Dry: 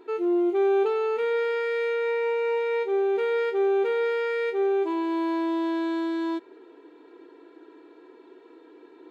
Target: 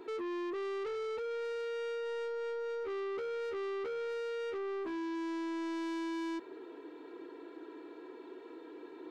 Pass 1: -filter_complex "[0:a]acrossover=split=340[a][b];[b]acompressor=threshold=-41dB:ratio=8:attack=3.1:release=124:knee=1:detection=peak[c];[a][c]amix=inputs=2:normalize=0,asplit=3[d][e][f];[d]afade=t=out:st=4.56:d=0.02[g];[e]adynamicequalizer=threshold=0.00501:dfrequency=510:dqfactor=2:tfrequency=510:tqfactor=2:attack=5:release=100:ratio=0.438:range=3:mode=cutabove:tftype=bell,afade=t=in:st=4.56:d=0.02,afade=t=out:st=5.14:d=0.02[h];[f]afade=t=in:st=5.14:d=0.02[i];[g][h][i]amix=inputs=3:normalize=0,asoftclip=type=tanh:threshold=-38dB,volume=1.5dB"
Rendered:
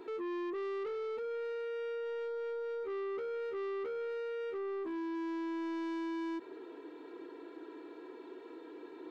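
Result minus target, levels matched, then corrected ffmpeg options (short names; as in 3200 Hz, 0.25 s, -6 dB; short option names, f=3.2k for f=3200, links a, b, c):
compressor: peak gain reduction +7 dB
-filter_complex "[0:a]acrossover=split=340[a][b];[b]acompressor=threshold=-33dB:ratio=8:attack=3.1:release=124:knee=1:detection=peak[c];[a][c]amix=inputs=2:normalize=0,asplit=3[d][e][f];[d]afade=t=out:st=4.56:d=0.02[g];[e]adynamicequalizer=threshold=0.00501:dfrequency=510:dqfactor=2:tfrequency=510:tqfactor=2:attack=5:release=100:ratio=0.438:range=3:mode=cutabove:tftype=bell,afade=t=in:st=4.56:d=0.02,afade=t=out:st=5.14:d=0.02[h];[f]afade=t=in:st=5.14:d=0.02[i];[g][h][i]amix=inputs=3:normalize=0,asoftclip=type=tanh:threshold=-38dB,volume=1.5dB"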